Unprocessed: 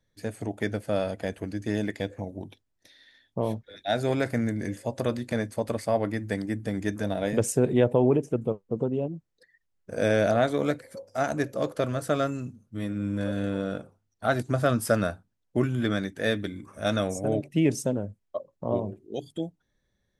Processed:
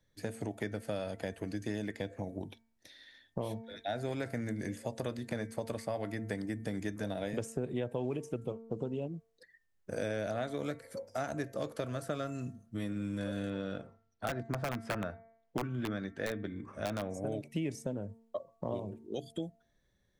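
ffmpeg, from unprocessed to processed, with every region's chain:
-filter_complex "[0:a]asettb=1/sr,asplit=3[a][b][c];[a]atrim=end=13.504[d];[b]atrim=start=13.5:end=17.14,asetpts=PTS-STARTPTS,afade=t=in:d=0.004:c=qsin,afade=t=out:st=3.636:d=0.004:c=qsin,lowpass=4.6k,aeval=exprs='(mod(5.31*val(0)+1,2)-1)/5.31':c=same[e];[c]atrim=start=17.136[f];[d][e]acrossfade=d=0.004:c1=hsin:c2=qsin[g];[g][f]acrossfade=d=0.004:c1=qsin:c2=hsin,bandreject=f=226.3:t=h:w=4,bandreject=f=452.6:t=h:w=4,bandreject=f=678.9:t=h:w=4,bandreject=f=905.2:t=h:w=4,bandreject=f=1.1315k:t=h:w=4,bandreject=f=1.3578k:t=h:w=4,bandreject=f=1.5841k:t=h:w=4,bandreject=f=1.8104k:t=h:w=4,bandreject=f=2.0367k:t=h:w=4,bandreject=f=2.263k:t=h:w=4,acrossover=split=97|2200[h][i][j];[h]acompressor=threshold=-53dB:ratio=4[k];[i]acompressor=threshold=-35dB:ratio=4[l];[j]acompressor=threshold=-51dB:ratio=4[m];[k][l][m]amix=inputs=3:normalize=0"

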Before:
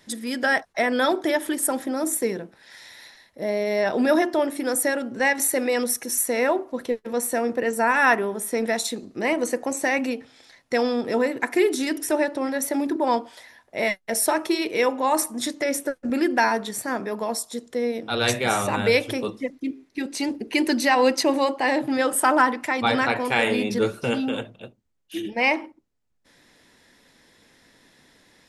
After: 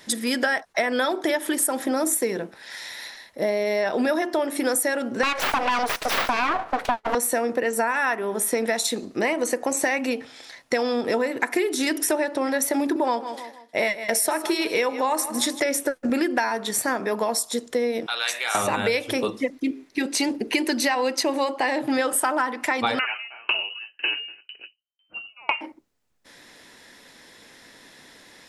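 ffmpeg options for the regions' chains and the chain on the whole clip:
-filter_complex "[0:a]asettb=1/sr,asplit=3[a][b][c];[a]atrim=end=5.234[d];[b]atrim=start=5.23:end=7.15,asetpts=PTS-STARTPTS,afade=t=in:d=0.004:c=qsin,afade=t=out:st=1.916:d=0.004:c=qsin,equalizer=f=170:t=o:w=2.9:g=5,aeval=exprs='abs(val(0))':c=same,asplit=2[e][f];[f]highpass=f=720:p=1,volume=13dB,asoftclip=type=tanh:threshold=-7.5dB[g];[e][g]amix=inputs=2:normalize=0,lowpass=f=2.2k:p=1,volume=-6dB[h];[c]atrim=start=7.146[i];[d][h]acrossfade=d=0.004:c1=hsin:c2=qsin[j];[j][i]acrossfade=d=0.004:c1=qsin:c2=hsin,asettb=1/sr,asplit=3[k][l][m];[k]atrim=end=12.804[n];[l]atrim=start=12.8:end=15.6,asetpts=PTS-STARTPTS,afade=t=in:d=0.004:c=qsin,afade=t=out:st=2.796:d=0.004:c=qsin,agate=range=-33dB:threshold=-41dB:ratio=3:release=100:detection=peak,aecho=1:1:157|314|471:0.168|0.0588|0.0206,atrim=end_sample=123480[o];[m]atrim=start=15.596[p];[n][o]acrossfade=d=0.004:c1=hsin:c2=qsin[q];[q][p]acrossfade=d=0.004:c1=qsin:c2=hsin,asettb=1/sr,asplit=3[r][s][t];[r]atrim=end=18.064[u];[s]atrim=start=18.06:end=18.55,asetpts=PTS-STARTPTS,afade=t=in:d=0.004:c=qsin,afade=t=out:st=0.486:d=0.004:c=qsin,acompressor=threshold=-32dB:ratio=2:attack=3.2:release=140:knee=1:detection=peak,highpass=1.1k[v];[t]atrim=start=18.546[w];[u][v]acrossfade=d=0.004:c1=hsin:c2=qsin[x];[x][w]acrossfade=d=0.004:c1=qsin:c2=hsin,asettb=1/sr,asplit=3[y][z][aa];[y]atrim=end=22.994[ab];[z]atrim=start=22.99:end=25.61,asetpts=PTS-STARTPTS,afade=t=in:d=0.004:c=qsin,afade=t=out:st=2.616:d=0.004:c=qsin,aeval=exprs='clip(val(0),-1,0.15)':c=same,lowpass=f=2.6k:t=q:w=0.5098,lowpass=f=2.6k:t=q:w=0.6013,lowpass=f=2.6k:t=q:w=0.9,lowpass=f=2.6k:t=q:w=2.563,afreqshift=-3100,aeval=exprs='val(0)*pow(10,-38*if(lt(mod(2*n/s,1),2*abs(2)/1000),1-mod(2*n/s,1)/(2*abs(2)/1000),(mod(2*n/s,1)-2*abs(2)/1000)/(1-2*abs(2)/1000))/20)':c=same[ac];[aa]atrim=start=25.606[ad];[ab][ac]acrossfade=d=0.004:c1=hsin:c2=qsin[ae];[ae][ad]acrossfade=d=0.004:c1=qsin:c2=hsin,lowshelf=f=240:g=-8.5,acompressor=threshold=-28dB:ratio=10,volume=8.5dB"

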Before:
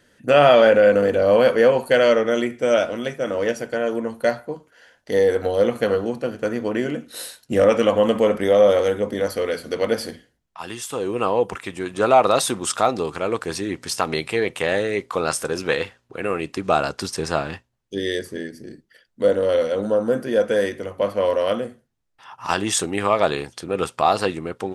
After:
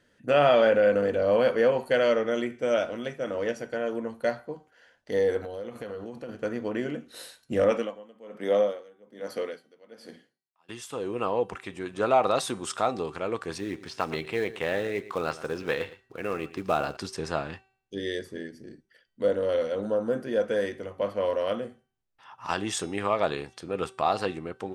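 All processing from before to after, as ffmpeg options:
-filter_complex "[0:a]asettb=1/sr,asplit=3[a][b][c];[a]atrim=end=5.414[d];[b]atrim=start=5.41:end=6.29,asetpts=PTS-STARTPTS,afade=t=in:d=0.004:c=qsin,afade=t=out:st=0.876:d=0.004:c=qsin,highshelf=f=10k:g=5,acompressor=threshold=-27dB:ratio=5:attack=3.2:release=140:knee=1:detection=peak[e];[c]atrim=start=6.286[f];[d][e]acrossfade=d=0.004:c1=hsin:c2=qsin[g];[g][f]acrossfade=d=0.004:c1=qsin:c2=hsin,asettb=1/sr,asplit=3[h][i][j];[h]atrim=end=7.714[k];[i]atrim=start=7.71:end=10.69,asetpts=PTS-STARTPTS,afade=t=in:d=0.004:c=qsin,afade=t=out:st=2.976:d=0.004:c=qsin,highpass=f=150:w=0.5412,highpass=f=150:w=1.3066,aeval=exprs='val(0)*pow(10,-27*(0.5-0.5*cos(2*PI*1.2*n/s))/20)':c=same[l];[j]atrim=start=10.686[m];[k][l]acrossfade=d=0.004:c1=hsin:c2=qsin[n];[n][m]acrossfade=d=0.004:c1=qsin:c2=hsin,asettb=1/sr,asplit=3[o][p][q];[o]atrim=end=13.584[r];[p]atrim=start=13.58:end=16.97,asetpts=PTS-STARTPTS,afade=t=in:d=0.004:c=qsin,afade=t=out:st=3.386:d=0.004:c=qsin,aecho=1:1:114:0.158,atrim=end_sample=149499,acrossover=split=4600[s][t];[t]acompressor=threshold=-46dB:ratio=4:attack=1:release=60[u];[s][u]amix=inputs=2:normalize=0,acrusher=bits=5:mode=log:mix=0:aa=0.000001[v];[q]atrim=start=16.966[w];[r][v]acrossfade=d=0.004:c1=hsin:c2=qsin[x];[x][w]acrossfade=d=0.004:c1=qsin:c2=hsin,highshelf=f=9k:g=-10.5,bandreject=f=383.8:t=h:w=4,bandreject=f=767.6:t=h:w=4,bandreject=f=1.1514k:t=h:w=4,bandreject=f=1.5352k:t=h:w=4,bandreject=f=1.919k:t=h:w=4,bandreject=f=2.3028k:t=h:w=4,bandreject=f=2.6866k:t=h:w=4,bandreject=f=3.0704k:t=h:w=4,bandreject=f=3.4542k:t=h:w=4,bandreject=f=3.838k:t=h:w=4,bandreject=f=4.2218k:t=h:w=4,bandreject=f=4.6056k:t=h:w=4,bandreject=f=4.9894k:t=h:w=4,bandreject=f=5.3732k:t=h:w=4,bandreject=f=5.757k:t=h:w=4,bandreject=f=6.1408k:t=h:w=4,bandreject=f=6.5246k:t=h:w=4,bandreject=f=6.9084k:t=h:w=4,bandreject=f=7.2922k:t=h:w=4,bandreject=f=7.676k:t=h:w=4,bandreject=f=8.0598k:t=h:w=4,bandreject=f=8.4436k:t=h:w=4,bandreject=f=8.8274k:t=h:w=4,bandreject=f=9.2112k:t=h:w=4,bandreject=f=9.595k:t=h:w=4,bandreject=f=9.9788k:t=h:w=4,bandreject=f=10.3626k:t=h:w=4,bandreject=f=10.7464k:t=h:w=4,bandreject=f=11.1302k:t=h:w=4,volume=-7dB"

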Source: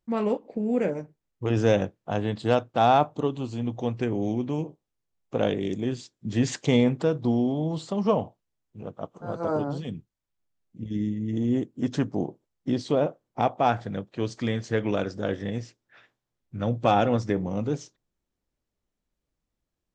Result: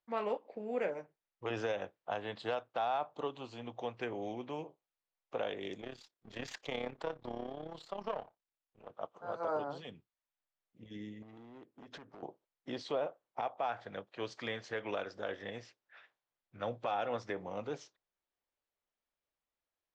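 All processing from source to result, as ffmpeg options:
-filter_complex "[0:a]asettb=1/sr,asplit=3[a][b][c];[a]atrim=end=5.814[d];[b]atrim=start=5.81:end=8.9,asetpts=PTS-STARTPTS,afade=t=in:d=0.004:c=qsin,afade=t=out:st=3.086:d=0.004:c=qsin,aeval=exprs='if(lt(val(0),0),0.447*val(0),val(0))':c=same,tremolo=f=34:d=0.71[e];[c]atrim=start=8.896[f];[d][e]acrossfade=d=0.004:c1=hsin:c2=qsin[g];[g][f]acrossfade=d=0.004:c1=qsin:c2=hsin,asettb=1/sr,asplit=3[h][i][j];[h]atrim=end=11.224[k];[i]atrim=start=11.22:end=12.23,asetpts=PTS-STARTPTS,afade=t=in:d=0.004:c=qsin,afade=t=out:st=1.006:d=0.004:c=qsin,lowpass=f=3k:p=1,acompressor=threshold=-33dB:ratio=12:attack=3.2:release=140:knee=1:detection=peak,volume=33dB,asoftclip=hard,volume=-33dB[l];[j]atrim=start=12.226[m];[k][l]acrossfade=d=0.004:c1=hsin:c2=qsin[n];[n][m]acrossfade=d=0.004:c1=qsin:c2=hsin,acrossover=split=490 4700:gain=0.126 1 0.178[o][p][q];[o][p][q]amix=inputs=3:normalize=0,alimiter=limit=-22.5dB:level=0:latency=1:release=193,volume=-3dB"

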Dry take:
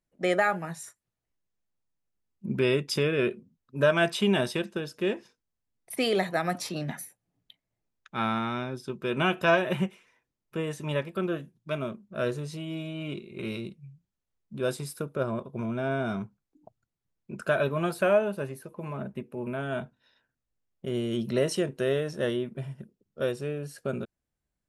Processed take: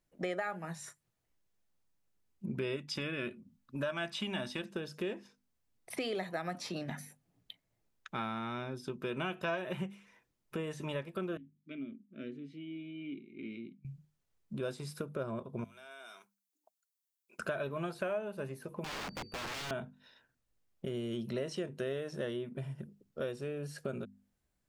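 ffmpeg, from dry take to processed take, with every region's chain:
-filter_complex "[0:a]asettb=1/sr,asplit=3[a][b][c];[a]atrim=end=2.764[d];[b]atrim=start=2.76:end=4.63,asetpts=PTS-STARTPTS,afade=t=in:d=0.004:c=qsin,afade=t=out:st=1.866:d=0.004:c=qsin,equalizer=f=440:t=o:w=0.76:g=-9,aecho=1:1:3.5:0.31,atrim=end_sample=82467[e];[c]atrim=start=4.626[f];[d][e]acrossfade=d=0.004:c1=hsin:c2=qsin[g];[g][f]acrossfade=d=0.004:c1=qsin:c2=hsin,asettb=1/sr,asplit=3[h][i][j];[h]atrim=end=11.374[k];[i]atrim=start=11.37:end=13.85,asetpts=PTS-STARTPTS,afade=t=in:d=0.004:c=qsin,afade=t=out:st=2.476:d=0.004:c=qsin,asplit=3[l][m][n];[l]bandpass=f=270:t=q:w=8,volume=0dB[o];[m]bandpass=f=2.29k:t=q:w=8,volume=-6dB[p];[n]bandpass=f=3.01k:t=q:w=8,volume=-9dB[q];[o][p][q]amix=inputs=3:normalize=0,highshelf=f=2.5k:g=-9.5[r];[j]atrim=start=13.846[s];[k][r]acrossfade=d=0.004:c1=hsin:c2=qsin[t];[t][s]acrossfade=d=0.004:c1=qsin:c2=hsin,asettb=1/sr,asplit=3[u][v][w];[u]atrim=end=15.644[x];[v]atrim=start=15.64:end=17.39,asetpts=PTS-STARTPTS,afade=t=in:d=0.004:c=qsin,afade=t=out:st=1.746:d=0.004:c=qsin,highpass=350,aderivative,acompressor=threshold=-51dB:ratio=6:attack=3.2:release=140:knee=1:detection=peak[y];[w]atrim=start=17.386[z];[x][y]acrossfade=d=0.004:c1=hsin:c2=qsin[aa];[aa][z]acrossfade=d=0.004:c1=qsin:c2=hsin,asettb=1/sr,asplit=3[ab][ac][ad];[ab]atrim=end=18.844[ae];[ac]atrim=start=18.84:end=19.71,asetpts=PTS-STARTPTS,afade=t=in:d=0.004:c=qsin,afade=t=out:st=0.866:d=0.004:c=qsin,agate=range=-8dB:threshold=-51dB:ratio=16:release=100:detection=peak,aeval=exprs='(mod(59.6*val(0)+1,2)-1)/59.6':c=same,aeval=exprs='val(0)+0.00112*sin(2*PI*4600*n/s)':c=same[af];[ad]atrim=start=19.706[ag];[ae][af]acrossfade=d=0.004:c1=hsin:c2=qsin[ah];[ah][ag]acrossfade=d=0.004:c1=qsin:c2=hsin,acrossover=split=6700[ai][aj];[aj]acompressor=threshold=-55dB:ratio=4:attack=1:release=60[ak];[ai][ak]amix=inputs=2:normalize=0,bandreject=f=50:t=h:w=6,bandreject=f=100:t=h:w=6,bandreject=f=150:t=h:w=6,bandreject=f=200:t=h:w=6,bandreject=f=250:t=h:w=6,acompressor=threshold=-43dB:ratio=3,volume=4dB"

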